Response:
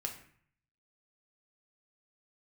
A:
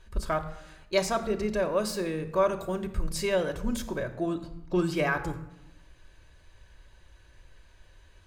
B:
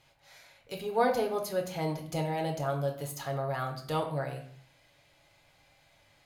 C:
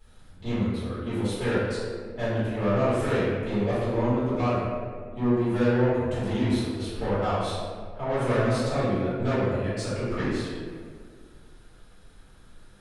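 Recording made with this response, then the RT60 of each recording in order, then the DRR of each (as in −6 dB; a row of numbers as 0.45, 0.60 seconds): B; 0.90, 0.55, 1.9 seconds; 6.0, 1.5, −13.5 decibels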